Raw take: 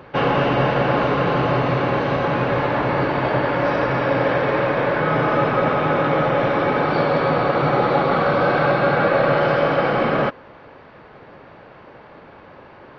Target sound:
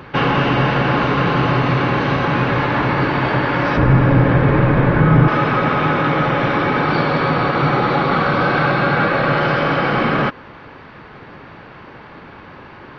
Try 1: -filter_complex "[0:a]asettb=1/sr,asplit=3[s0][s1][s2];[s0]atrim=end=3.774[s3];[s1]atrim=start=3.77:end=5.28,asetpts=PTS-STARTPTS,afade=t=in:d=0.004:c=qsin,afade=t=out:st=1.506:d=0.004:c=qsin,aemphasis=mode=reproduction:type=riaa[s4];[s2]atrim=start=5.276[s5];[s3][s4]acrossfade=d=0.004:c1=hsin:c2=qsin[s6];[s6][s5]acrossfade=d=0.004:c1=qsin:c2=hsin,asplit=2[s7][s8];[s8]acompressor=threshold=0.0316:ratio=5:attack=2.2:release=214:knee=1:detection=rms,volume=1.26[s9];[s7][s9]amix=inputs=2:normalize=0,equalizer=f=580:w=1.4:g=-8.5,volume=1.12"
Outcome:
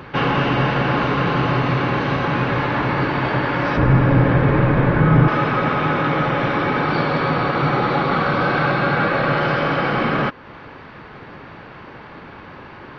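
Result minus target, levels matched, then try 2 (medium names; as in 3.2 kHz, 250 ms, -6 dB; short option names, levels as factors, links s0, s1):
compression: peak gain reduction +9 dB
-filter_complex "[0:a]asettb=1/sr,asplit=3[s0][s1][s2];[s0]atrim=end=3.774[s3];[s1]atrim=start=3.77:end=5.28,asetpts=PTS-STARTPTS,afade=t=in:d=0.004:c=qsin,afade=t=out:st=1.506:d=0.004:c=qsin,aemphasis=mode=reproduction:type=riaa[s4];[s2]atrim=start=5.276[s5];[s3][s4]acrossfade=d=0.004:c1=hsin:c2=qsin[s6];[s6][s5]acrossfade=d=0.004:c1=qsin:c2=hsin,asplit=2[s7][s8];[s8]acompressor=threshold=0.112:ratio=5:attack=2.2:release=214:knee=1:detection=rms,volume=1.26[s9];[s7][s9]amix=inputs=2:normalize=0,equalizer=f=580:w=1.4:g=-8.5,volume=1.12"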